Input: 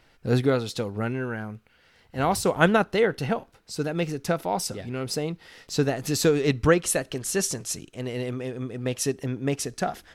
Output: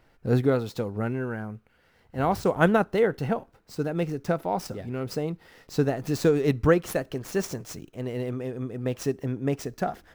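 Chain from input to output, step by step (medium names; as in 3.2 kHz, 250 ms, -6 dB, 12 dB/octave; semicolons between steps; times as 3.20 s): median filter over 5 samples; peaking EQ 3.5 kHz -7.5 dB 2 oct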